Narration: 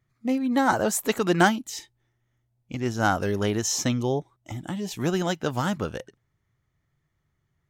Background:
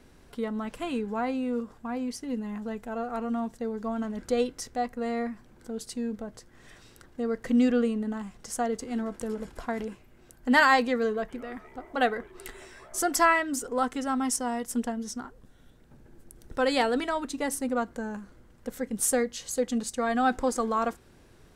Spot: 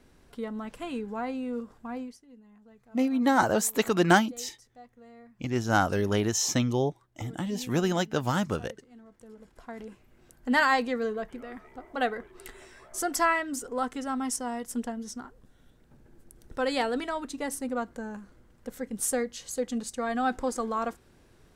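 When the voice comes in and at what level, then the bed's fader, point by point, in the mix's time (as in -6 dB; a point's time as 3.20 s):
2.70 s, -1.0 dB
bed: 2.00 s -3.5 dB
2.24 s -21 dB
9.02 s -21 dB
10.13 s -3 dB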